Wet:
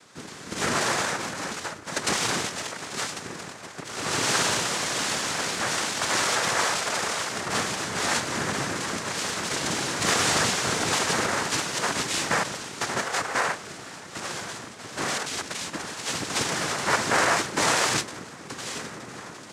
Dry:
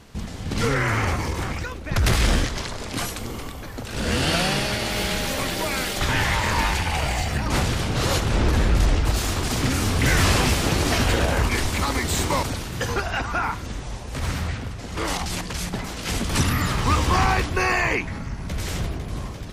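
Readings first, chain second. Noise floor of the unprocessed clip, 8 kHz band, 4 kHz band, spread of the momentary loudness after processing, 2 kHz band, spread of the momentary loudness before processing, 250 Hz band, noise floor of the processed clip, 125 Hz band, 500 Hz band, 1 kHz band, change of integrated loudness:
-34 dBFS, +3.0 dB, -0.5 dB, 14 LU, -1.0 dB, 11 LU, -7.0 dB, -42 dBFS, -14.5 dB, -3.0 dB, -1.5 dB, -2.5 dB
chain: Bessel high-pass 370 Hz; noise vocoder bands 3

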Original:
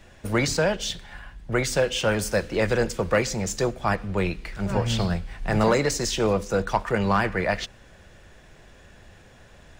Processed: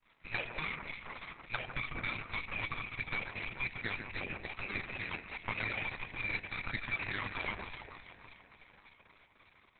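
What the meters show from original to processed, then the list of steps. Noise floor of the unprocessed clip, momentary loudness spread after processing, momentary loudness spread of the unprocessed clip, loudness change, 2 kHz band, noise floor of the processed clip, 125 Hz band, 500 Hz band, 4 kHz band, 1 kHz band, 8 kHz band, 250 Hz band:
-51 dBFS, 10 LU, 7 LU, -13.5 dB, -6.5 dB, -66 dBFS, -19.0 dB, -25.5 dB, -14.0 dB, -15.5 dB, under -40 dB, -22.0 dB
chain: HPF 260 Hz 24 dB/oct; compressor 20:1, threshold -27 dBFS, peak gain reduction 12 dB; notches 60/120/180/240/300/360/420/480/540 Hz; expander -48 dBFS; inverted band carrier 2800 Hz; half-wave rectifier; on a send: echo with dull and thin repeats by turns 0.147 s, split 1800 Hz, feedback 78%, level -5 dB; on the sum: Opus 6 kbps 48000 Hz

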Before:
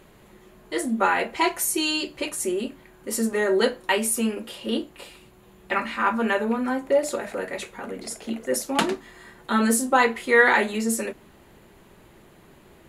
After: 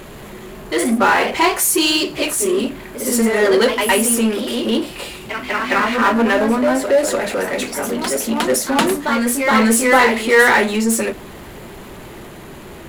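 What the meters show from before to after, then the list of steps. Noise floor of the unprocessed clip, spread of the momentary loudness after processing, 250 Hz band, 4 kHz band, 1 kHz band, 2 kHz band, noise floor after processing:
-53 dBFS, 22 LU, +8.5 dB, +9.5 dB, +7.5 dB, +7.5 dB, -36 dBFS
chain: de-hum 88.34 Hz, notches 2; echoes that change speed 0.107 s, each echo +1 st, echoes 2, each echo -6 dB; power-law curve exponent 0.7; gain +2.5 dB

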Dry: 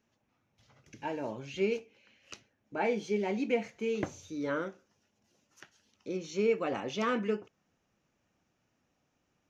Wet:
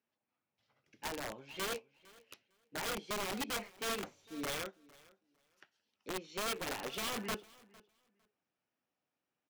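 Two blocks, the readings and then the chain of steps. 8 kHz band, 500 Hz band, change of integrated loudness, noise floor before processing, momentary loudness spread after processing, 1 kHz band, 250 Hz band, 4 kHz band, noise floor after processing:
n/a, -11.5 dB, -6.0 dB, -78 dBFS, 9 LU, -3.5 dB, -10.5 dB, +5.5 dB, under -85 dBFS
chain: HPF 350 Hz 6 dB/oct; bell 6400 Hz -11.5 dB 0.3 oct; limiter -28 dBFS, peak gain reduction 8.5 dB; wrapped overs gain 31.5 dB; feedback echo 0.455 s, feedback 22%, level -15.5 dB; upward expander 1.5:1, over -56 dBFS

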